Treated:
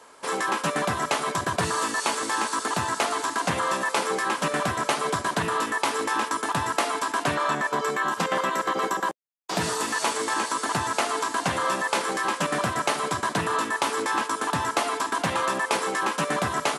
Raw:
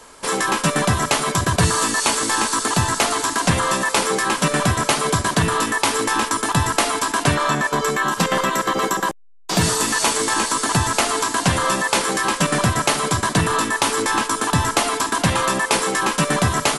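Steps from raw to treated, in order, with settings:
high-pass filter 480 Hz 6 dB per octave
high-shelf EQ 2,200 Hz −8.5 dB
highs frequency-modulated by the lows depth 0.16 ms
level −2 dB

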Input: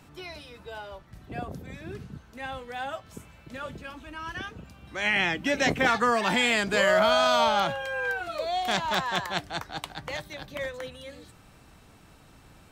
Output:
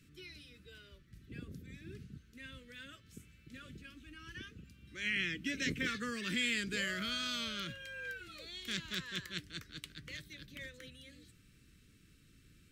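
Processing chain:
Butterworth band-reject 800 Hz, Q 0.56
level −8.5 dB

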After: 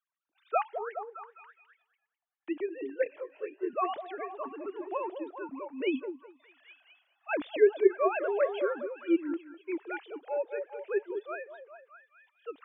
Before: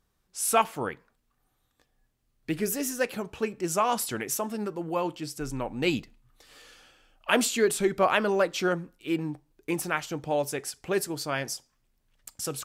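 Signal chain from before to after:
three sine waves on the formant tracks
echo through a band-pass that steps 206 ms, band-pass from 500 Hz, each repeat 0.7 octaves, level −6 dB
0:03.04–0:03.70: micro pitch shift up and down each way 12 cents
level −4 dB

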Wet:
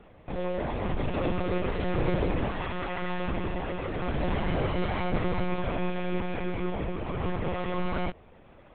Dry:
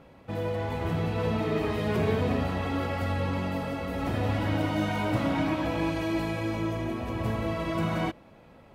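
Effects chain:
0:02.51–0:03.28: parametric band 290 Hz −7 dB 1.7 octaves
one-pitch LPC vocoder at 8 kHz 180 Hz

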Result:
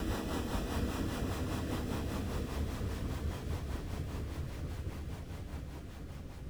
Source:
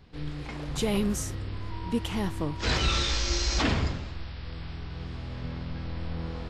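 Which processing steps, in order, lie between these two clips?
decimation without filtering 20×
extreme stretch with random phases 16×, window 0.50 s, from 0:03.63
rotating-speaker cabinet horn 5 Hz
level −9 dB

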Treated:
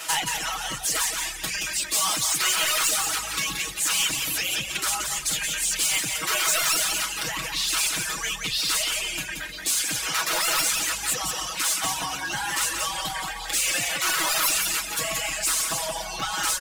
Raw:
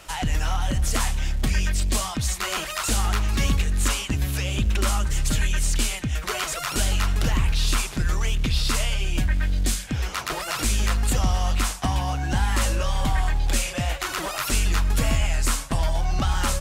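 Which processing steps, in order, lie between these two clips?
in parallel at −1 dB: compressor whose output falls as the input rises −30 dBFS, ratio −1
on the sum: high-pass filter 1,300 Hz 6 dB per octave
high-shelf EQ 5,600 Hz +4 dB
reverb whose tail is shaped and stops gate 360 ms flat, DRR 7 dB
soft clipping −20.5 dBFS, distortion −12 dB
on a send: single-tap delay 176 ms −4.5 dB
on the sum: reverb reduction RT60 0.87 s
comb filter 6.2 ms, depth 98%

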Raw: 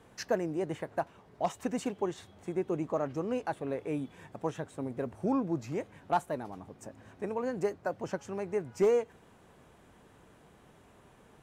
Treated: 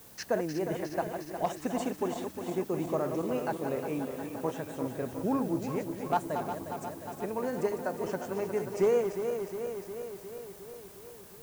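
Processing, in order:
feedback delay that plays each chunk backwards 179 ms, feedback 81%, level −7.5 dB
background noise blue −54 dBFS

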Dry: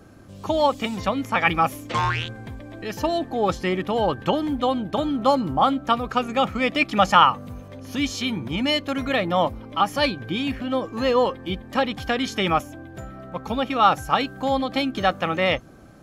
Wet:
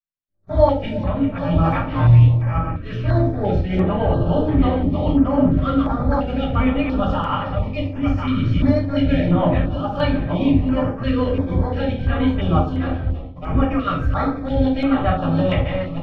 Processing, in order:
feedback delay that plays each chunk backwards 520 ms, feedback 42%, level −7.5 dB
low shelf with overshoot 150 Hz +7.5 dB, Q 1.5
brickwall limiter −12.5 dBFS, peak gain reduction 11 dB
transient designer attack −8 dB, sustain −3 dB
rotating-speaker cabinet horn 1 Hz, later 6.7 Hz, at 0:02.36
surface crackle 150 per second −37 dBFS
dead-zone distortion −40.5 dBFS
feedback echo with a band-pass in the loop 330 ms, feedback 46%, band-pass 370 Hz, level −12 dB
noise gate −36 dBFS, range −39 dB
high-frequency loss of the air 340 metres
rectangular room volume 240 cubic metres, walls furnished, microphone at 6.1 metres
notch on a step sequencer 2.9 Hz 830–7,200 Hz
level −2 dB

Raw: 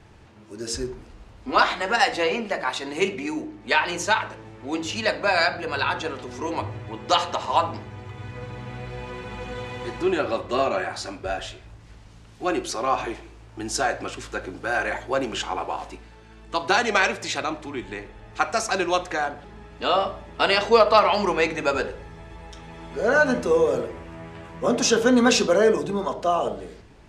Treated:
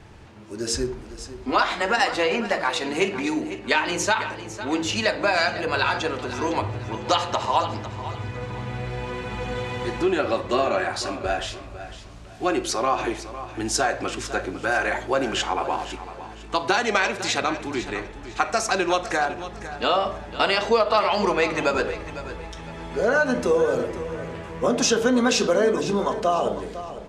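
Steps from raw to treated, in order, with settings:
downward compressor 2.5 to 1, threshold −23 dBFS, peak gain reduction 8.5 dB
repeating echo 504 ms, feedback 30%, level −13 dB
level +4 dB

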